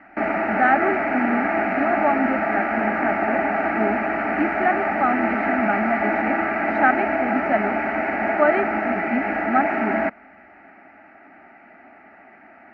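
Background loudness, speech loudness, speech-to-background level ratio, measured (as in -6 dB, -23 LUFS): -22.5 LUFS, -25.0 LUFS, -2.5 dB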